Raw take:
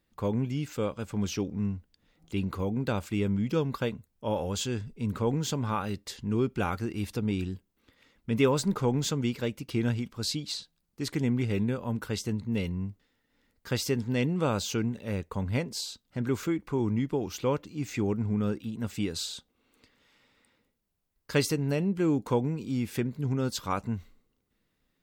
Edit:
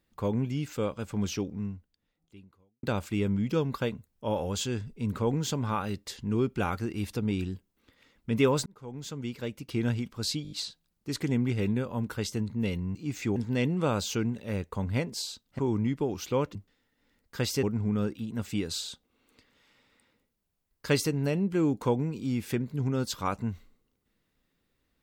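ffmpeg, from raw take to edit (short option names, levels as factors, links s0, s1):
-filter_complex "[0:a]asplit=12[s0][s1][s2][s3][s4][s5][s6][s7][s8][s9][s10][s11];[s0]atrim=end=2.83,asetpts=PTS-STARTPTS,afade=t=out:st=1.32:d=1.51:c=qua[s12];[s1]atrim=start=2.83:end=8.66,asetpts=PTS-STARTPTS,afade=t=in:d=0.004:c=hsin,afade=t=out:st=5.826:d=0.004:c=hsin[s13];[s2]atrim=start=8.66:end=10.452,asetpts=PTS-STARTPTS,afade=t=in:d=1.27[s14];[s3]atrim=start=10.428:end=10.452[s15];[s4]atrim=start=10.428:end=10.452[s16];[s5]atrim=start=10.428:end=10.452[s17];[s6]atrim=start=10.428:end=12.872[s18];[s7]atrim=start=17.668:end=18.082[s19];[s8]atrim=start=13.948:end=16.182[s20];[s9]atrim=start=16.708:end=17.672[s21];[s10]atrim=start=12.868:end=13.952[s22];[s11]atrim=start=18.078[s23];[s12][s13][s14]concat=n=3:v=0:a=1[s24];[s24][s15]acrossfade=d=0.004:c1=hsin:c2=hsin[s25];[s25][s16]acrossfade=d=0.004:c1=hsin:c2=hsin[s26];[s26][s17]acrossfade=d=0.004:c1=hsin:c2=hsin[s27];[s27][s18]acrossfade=d=0.004:c1=hsin:c2=hsin[s28];[s28][s19]acrossfade=d=0.004:c1=hsin:c2=hsin[s29];[s29][s20]acrossfade=d=0.004:c1=hsin:c2=hsin[s30];[s30][s21]acrossfade=d=0.004:c1=hsin:c2=hsin[s31];[s31][s22]acrossfade=d=0.004:c1=hsin:c2=hsin[s32];[s32][s23]acrossfade=d=0.004:c1=hsin:c2=hsin"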